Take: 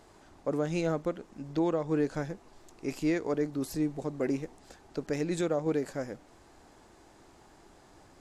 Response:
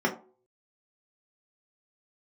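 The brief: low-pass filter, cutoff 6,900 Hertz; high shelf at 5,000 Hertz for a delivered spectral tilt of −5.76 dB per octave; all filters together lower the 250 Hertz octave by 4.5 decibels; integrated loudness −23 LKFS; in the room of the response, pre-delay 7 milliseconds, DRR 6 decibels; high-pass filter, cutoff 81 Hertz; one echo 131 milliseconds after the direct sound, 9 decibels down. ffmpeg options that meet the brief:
-filter_complex "[0:a]highpass=81,lowpass=6900,equalizer=frequency=250:width_type=o:gain=-6.5,highshelf=frequency=5000:gain=5,aecho=1:1:131:0.355,asplit=2[link_01][link_02];[1:a]atrim=start_sample=2205,adelay=7[link_03];[link_02][link_03]afir=irnorm=-1:irlink=0,volume=-18.5dB[link_04];[link_01][link_04]amix=inputs=2:normalize=0,volume=11dB"

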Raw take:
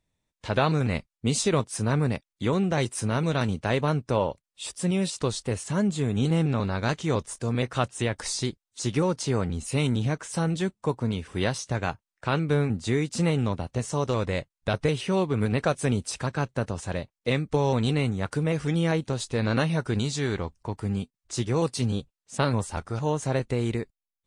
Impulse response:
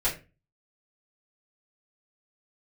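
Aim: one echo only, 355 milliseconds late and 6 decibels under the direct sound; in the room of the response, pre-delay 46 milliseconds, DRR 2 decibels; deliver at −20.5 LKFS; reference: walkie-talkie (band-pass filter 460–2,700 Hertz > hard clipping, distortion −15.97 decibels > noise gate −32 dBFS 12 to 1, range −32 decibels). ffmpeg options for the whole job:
-filter_complex "[0:a]aecho=1:1:355:0.501,asplit=2[link_01][link_02];[1:a]atrim=start_sample=2205,adelay=46[link_03];[link_02][link_03]afir=irnorm=-1:irlink=0,volume=-11.5dB[link_04];[link_01][link_04]amix=inputs=2:normalize=0,highpass=460,lowpass=2700,asoftclip=type=hard:threshold=-20.5dB,agate=range=-32dB:threshold=-32dB:ratio=12,volume=10dB"

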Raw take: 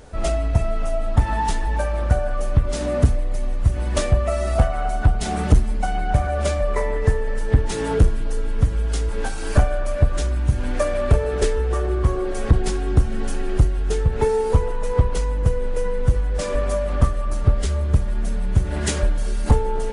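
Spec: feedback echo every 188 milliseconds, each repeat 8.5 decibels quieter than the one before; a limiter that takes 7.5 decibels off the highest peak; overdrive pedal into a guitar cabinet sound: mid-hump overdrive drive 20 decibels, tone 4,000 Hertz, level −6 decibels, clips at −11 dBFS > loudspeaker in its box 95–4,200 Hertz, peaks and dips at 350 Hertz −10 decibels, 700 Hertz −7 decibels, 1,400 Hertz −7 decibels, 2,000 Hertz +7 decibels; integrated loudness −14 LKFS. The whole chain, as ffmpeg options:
ffmpeg -i in.wav -filter_complex "[0:a]alimiter=limit=-14.5dB:level=0:latency=1,aecho=1:1:188|376|564|752:0.376|0.143|0.0543|0.0206,asplit=2[link_01][link_02];[link_02]highpass=frequency=720:poles=1,volume=20dB,asoftclip=type=tanh:threshold=-11dB[link_03];[link_01][link_03]amix=inputs=2:normalize=0,lowpass=frequency=4000:poles=1,volume=-6dB,highpass=95,equalizer=frequency=350:width_type=q:width=4:gain=-10,equalizer=frequency=700:width_type=q:width=4:gain=-7,equalizer=frequency=1400:width_type=q:width=4:gain=-7,equalizer=frequency=2000:width_type=q:width=4:gain=7,lowpass=frequency=4200:width=0.5412,lowpass=frequency=4200:width=1.3066,volume=9.5dB" out.wav

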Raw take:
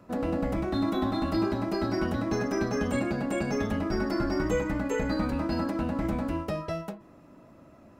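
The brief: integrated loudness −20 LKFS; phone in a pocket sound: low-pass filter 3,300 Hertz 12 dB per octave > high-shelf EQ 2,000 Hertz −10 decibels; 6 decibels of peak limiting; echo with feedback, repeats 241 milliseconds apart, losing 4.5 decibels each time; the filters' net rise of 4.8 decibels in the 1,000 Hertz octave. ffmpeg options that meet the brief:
ffmpeg -i in.wav -af "equalizer=frequency=1000:width_type=o:gain=8.5,alimiter=limit=-19.5dB:level=0:latency=1,lowpass=3300,highshelf=frequency=2000:gain=-10,aecho=1:1:241|482|723|964|1205|1446|1687|1928|2169:0.596|0.357|0.214|0.129|0.0772|0.0463|0.0278|0.0167|0.01,volume=8.5dB" out.wav

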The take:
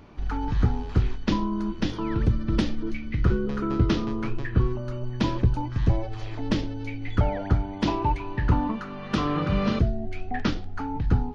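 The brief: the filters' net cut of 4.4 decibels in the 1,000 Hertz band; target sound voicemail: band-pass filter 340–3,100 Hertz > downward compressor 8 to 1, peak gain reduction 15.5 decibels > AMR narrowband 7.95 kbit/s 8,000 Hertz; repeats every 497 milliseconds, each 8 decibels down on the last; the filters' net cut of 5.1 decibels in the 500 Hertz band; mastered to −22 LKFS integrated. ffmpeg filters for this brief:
ffmpeg -i in.wav -af "highpass=340,lowpass=3100,equalizer=frequency=500:width_type=o:gain=-4,equalizer=frequency=1000:width_type=o:gain=-4,aecho=1:1:497|994|1491|1988|2485:0.398|0.159|0.0637|0.0255|0.0102,acompressor=threshold=-41dB:ratio=8,volume=24dB" -ar 8000 -c:a libopencore_amrnb -b:a 7950 out.amr

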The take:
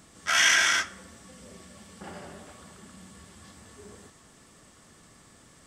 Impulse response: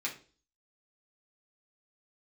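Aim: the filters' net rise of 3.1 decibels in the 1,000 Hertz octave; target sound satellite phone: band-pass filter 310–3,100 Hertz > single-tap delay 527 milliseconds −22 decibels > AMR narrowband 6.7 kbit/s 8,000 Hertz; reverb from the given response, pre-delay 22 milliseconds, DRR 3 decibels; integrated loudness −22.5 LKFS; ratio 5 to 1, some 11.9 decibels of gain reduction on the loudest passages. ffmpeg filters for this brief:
-filter_complex "[0:a]equalizer=frequency=1000:width_type=o:gain=5,acompressor=threshold=-30dB:ratio=5,asplit=2[link_01][link_02];[1:a]atrim=start_sample=2205,adelay=22[link_03];[link_02][link_03]afir=irnorm=-1:irlink=0,volume=-6.5dB[link_04];[link_01][link_04]amix=inputs=2:normalize=0,highpass=310,lowpass=3100,aecho=1:1:527:0.0794,volume=15.5dB" -ar 8000 -c:a libopencore_amrnb -b:a 6700

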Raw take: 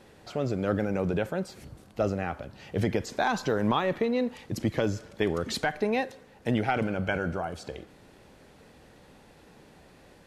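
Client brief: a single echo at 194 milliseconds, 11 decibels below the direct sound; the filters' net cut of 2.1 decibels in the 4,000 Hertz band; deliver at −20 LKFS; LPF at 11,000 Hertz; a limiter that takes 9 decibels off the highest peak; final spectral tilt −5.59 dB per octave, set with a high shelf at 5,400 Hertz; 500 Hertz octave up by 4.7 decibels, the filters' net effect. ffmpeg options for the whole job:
ffmpeg -i in.wav -af "lowpass=11000,equalizer=frequency=500:width_type=o:gain=5.5,equalizer=frequency=4000:width_type=o:gain=-5,highshelf=frequency=5400:gain=6,alimiter=limit=-19.5dB:level=0:latency=1,aecho=1:1:194:0.282,volume=11dB" out.wav

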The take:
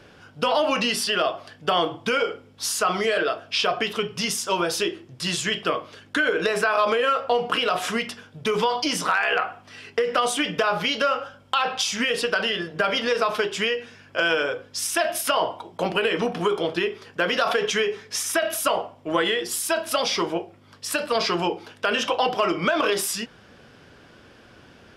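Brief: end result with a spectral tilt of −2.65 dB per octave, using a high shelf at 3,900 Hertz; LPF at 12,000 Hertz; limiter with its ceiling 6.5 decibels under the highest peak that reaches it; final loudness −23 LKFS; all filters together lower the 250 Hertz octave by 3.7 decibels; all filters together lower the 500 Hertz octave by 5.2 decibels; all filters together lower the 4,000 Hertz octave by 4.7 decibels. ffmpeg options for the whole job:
ffmpeg -i in.wav -af "lowpass=12000,equalizer=frequency=250:width_type=o:gain=-3,equalizer=frequency=500:width_type=o:gain=-5.5,highshelf=frequency=3900:gain=-5.5,equalizer=frequency=4000:width_type=o:gain=-3.5,volume=6dB,alimiter=limit=-11.5dB:level=0:latency=1" out.wav

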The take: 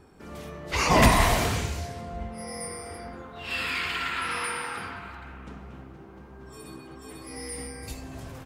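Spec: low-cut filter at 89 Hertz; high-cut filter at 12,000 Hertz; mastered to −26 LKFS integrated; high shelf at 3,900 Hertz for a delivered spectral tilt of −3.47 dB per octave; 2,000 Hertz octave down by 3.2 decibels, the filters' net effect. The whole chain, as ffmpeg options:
ffmpeg -i in.wav -af "highpass=89,lowpass=12000,equalizer=frequency=2000:width_type=o:gain=-5,highshelf=frequency=3900:gain=4,volume=2dB" out.wav

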